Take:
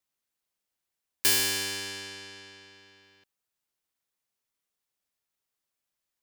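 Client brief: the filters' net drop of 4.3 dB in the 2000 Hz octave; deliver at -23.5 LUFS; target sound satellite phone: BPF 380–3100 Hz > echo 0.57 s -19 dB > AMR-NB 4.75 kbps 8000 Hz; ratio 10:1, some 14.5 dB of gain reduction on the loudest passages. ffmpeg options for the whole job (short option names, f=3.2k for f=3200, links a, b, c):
-af "equalizer=f=2k:t=o:g=-4.5,acompressor=threshold=-34dB:ratio=10,highpass=380,lowpass=3.1k,aecho=1:1:570:0.112,volume=24dB" -ar 8000 -c:a libopencore_amrnb -b:a 4750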